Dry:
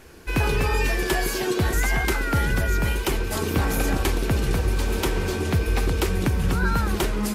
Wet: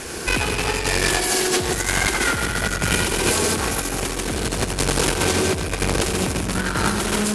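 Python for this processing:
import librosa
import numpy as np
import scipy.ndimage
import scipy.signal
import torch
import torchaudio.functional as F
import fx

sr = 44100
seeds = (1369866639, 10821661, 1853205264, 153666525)

y = fx.high_shelf(x, sr, hz=5500.0, db=11.0)
y = fx.echo_feedback(y, sr, ms=86, feedback_pct=60, wet_db=-7.0)
y = fx.tube_stage(y, sr, drive_db=26.0, bias=0.65)
y = y + 10.0 ** (-5.0 / 20.0) * np.pad(y, (int(138 * sr / 1000.0), 0))[:len(y)]
y = fx.over_compress(y, sr, threshold_db=-31.0, ratio=-0.5)
y = fx.fold_sine(y, sr, drive_db=3, ceiling_db=-18.5)
y = scipy.signal.sosfilt(scipy.signal.butter(8, 11000.0, 'lowpass', fs=sr, output='sos'), y)
y = fx.low_shelf(y, sr, hz=86.0, db=-10.5)
y = y * 10.0 ** (7.5 / 20.0)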